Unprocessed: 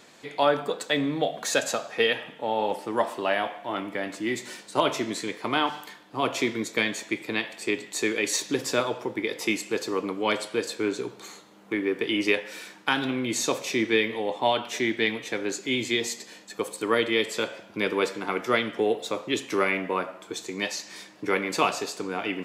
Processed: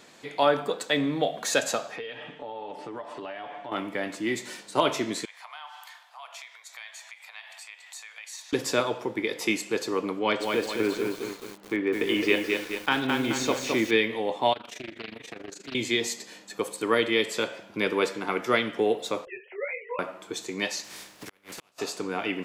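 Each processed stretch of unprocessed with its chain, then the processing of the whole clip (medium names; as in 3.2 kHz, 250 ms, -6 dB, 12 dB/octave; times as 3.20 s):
1.96–3.72 s: comb 6.9 ms, depth 45% + compression, threshold -34 dBFS + distance through air 81 m
5.25–8.53 s: compression 3:1, threshold -42 dBFS + steep high-pass 690 Hz 48 dB/octave
10.19–13.91 s: distance through air 74 m + bit-crushed delay 214 ms, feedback 55%, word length 7-bit, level -3.5 dB
14.53–15.75 s: AM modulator 25 Hz, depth 75% + compression 2.5:1, threshold -39 dBFS + loudspeaker Doppler distortion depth 0.49 ms
19.25–19.99 s: formants replaced by sine waves + static phaser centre 1.2 kHz, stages 6 + detune thickener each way 49 cents
20.83–21.78 s: spectral contrast reduction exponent 0.49 + inverted gate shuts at -13 dBFS, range -38 dB + compression 12:1, threshold -37 dBFS
whole clip: none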